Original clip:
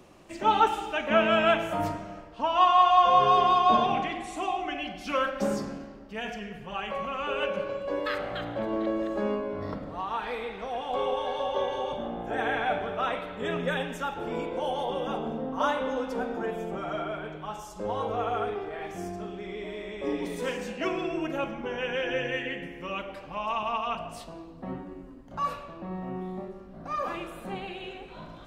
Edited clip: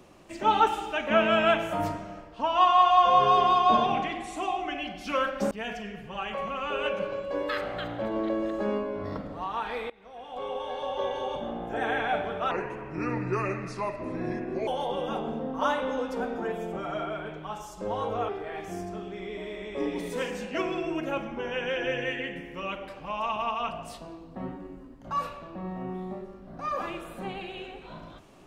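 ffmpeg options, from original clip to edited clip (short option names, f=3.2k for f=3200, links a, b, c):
-filter_complex "[0:a]asplit=6[a][b][c][d][e][f];[a]atrim=end=5.512[g];[b]atrim=start=6.078:end=10.47,asetpts=PTS-STARTPTS,afade=t=out:st=4.388:d=0.004:c=hsin:silence=0.0794328[h];[c]atrim=start=10.47:end=13.084,asetpts=PTS-STARTPTS,afade=t=in:d=1.86:c=qsin:silence=0.0794328[i];[d]atrim=start=13.08:end=14.66,asetpts=PTS-STARTPTS,asetrate=32193,aresample=44100,atrim=end_sample=95449,asetpts=PTS-STARTPTS[j];[e]atrim=start=14.656:end=18.272[k];[f]atrim=start=18.548[l];[h][i]concat=n=2:v=0:a=1[m];[g][m]acrossfade=d=0.004:c1=hsin:c2=hsin[n];[n][j]acrossfade=d=0.004:c1=hsin:c2=hsin[o];[o][k]acrossfade=d=0.004:c1=hsin:c2=hsin[p];[p][l]acrossfade=d=0.004:c1=hsin:c2=hsin"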